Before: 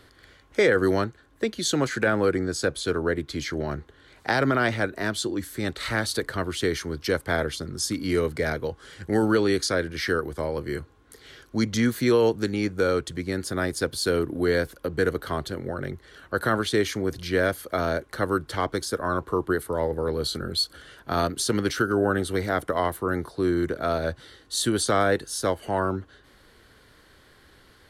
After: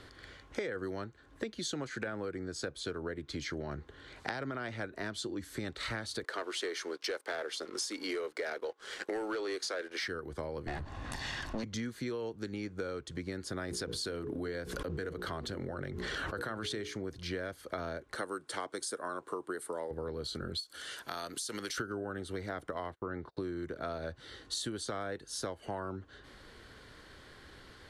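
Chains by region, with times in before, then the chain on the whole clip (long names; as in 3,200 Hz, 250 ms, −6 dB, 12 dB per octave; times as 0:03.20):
0:06.24–0:10.08: high-pass filter 370 Hz 24 dB per octave + leveller curve on the samples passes 2
0:10.67–0:11.64: lower of the sound and its delayed copy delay 1.1 ms + high-shelf EQ 8,000 Hz −10 dB + envelope flattener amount 50%
0:13.68–0:16.96: mains-hum notches 60/120/180/240/300/360/420/480 Hz + background raised ahead of every attack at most 29 dB per second
0:18.15–0:19.91: high-pass filter 280 Hz + parametric band 8,900 Hz +13.5 dB 0.62 octaves
0:20.60–0:21.78: RIAA equalisation recording + downward compressor 2.5 to 1, threshold −38 dBFS
0:22.91–0:23.37: low-pass filter 3,500 Hz + noise gate −42 dBFS, range −32 dB
whole clip: low-pass filter 8,300 Hz 12 dB per octave; downward compressor 10 to 1, threshold −36 dBFS; level +1 dB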